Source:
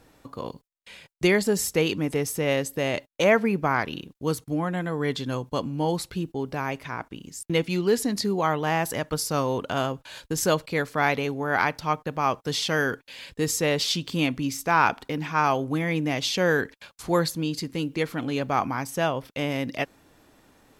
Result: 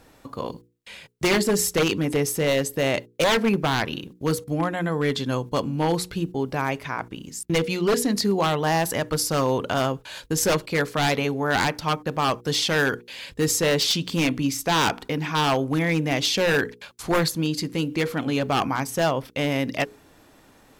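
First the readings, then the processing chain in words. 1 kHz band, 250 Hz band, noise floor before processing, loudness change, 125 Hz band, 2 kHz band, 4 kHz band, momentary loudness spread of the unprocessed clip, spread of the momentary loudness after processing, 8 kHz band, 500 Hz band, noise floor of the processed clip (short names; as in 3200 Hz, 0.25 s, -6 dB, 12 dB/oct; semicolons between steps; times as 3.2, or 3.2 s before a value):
+0.5 dB, +2.5 dB, -62 dBFS, +2.0 dB, +3.0 dB, +1.5 dB, +5.0 dB, 9 LU, 9 LU, +4.5 dB, +2.0 dB, -55 dBFS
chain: notches 60/120/180/240/300/360/420/480 Hz; wavefolder -18 dBFS; gain +4 dB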